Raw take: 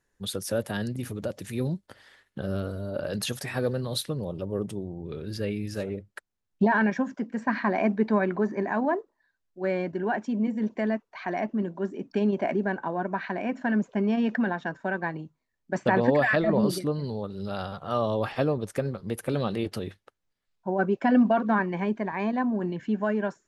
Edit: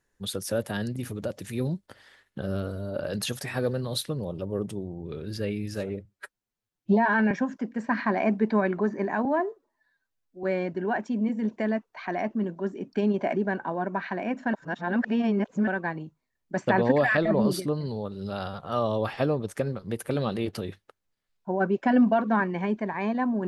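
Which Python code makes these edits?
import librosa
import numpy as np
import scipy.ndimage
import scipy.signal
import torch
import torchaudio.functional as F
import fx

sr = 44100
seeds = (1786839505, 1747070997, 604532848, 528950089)

y = fx.edit(x, sr, fx.stretch_span(start_s=6.05, length_s=0.84, factor=1.5),
    fx.stretch_span(start_s=8.83, length_s=0.79, factor=1.5),
    fx.reverse_span(start_s=13.72, length_s=1.14), tone=tone)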